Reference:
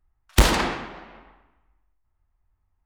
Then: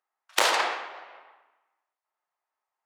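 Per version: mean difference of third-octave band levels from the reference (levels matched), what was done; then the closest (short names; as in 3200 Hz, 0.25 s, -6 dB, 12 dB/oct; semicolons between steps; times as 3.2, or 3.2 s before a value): 7.5 dB: HPF 510 Hz 24 dB/oct; high shelf 12000 Hz -11 dB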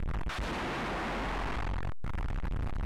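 15.0 dB: infinite clipping; LPF 9500 Hz 12 dB/oct; tone controls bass +3 dB, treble -14 dB; gain -7 dB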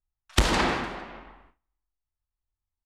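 4.5 dB: feedback echo 0.152 s, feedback 36%, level -20 dB; gate with hold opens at -49 dBFS; compressor 6:1, threshold -22 dBFS, peak gain reduction 11 dB; LPF 9300 Hz 12 dB/oct; gain +3.5 dB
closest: third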